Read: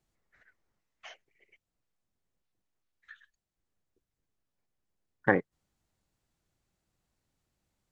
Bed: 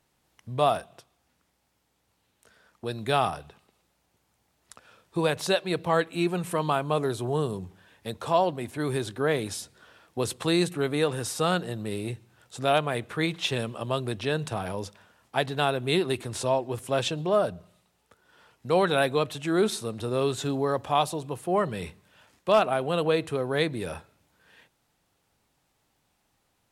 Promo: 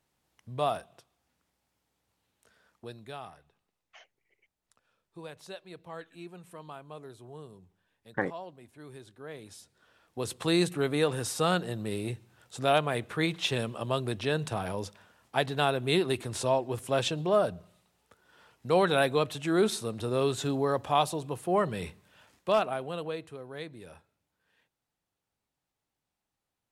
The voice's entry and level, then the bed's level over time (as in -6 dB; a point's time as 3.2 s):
2.90 s, -6.0 dB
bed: 2.72 s -6 dB
3.18 s -19 dB
9.22 s -19 dB
10.55 s -1.5 dB
22.3 s -1.5 dB
23.38 s -15 dB